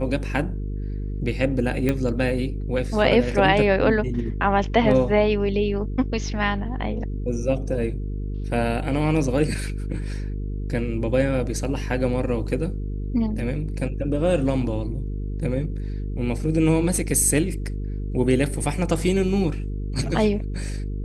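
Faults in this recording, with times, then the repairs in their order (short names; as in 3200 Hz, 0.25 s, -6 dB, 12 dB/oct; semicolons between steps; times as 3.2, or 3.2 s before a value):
buzz 50 Hz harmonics 9 -28 dBFS
1.89 pop -10 dBFS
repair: de-click; de-hum 50 Hz, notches 9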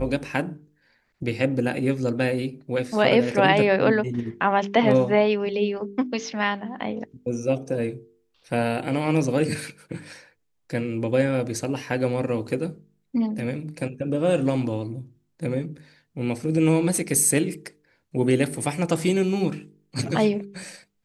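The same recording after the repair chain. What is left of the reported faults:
none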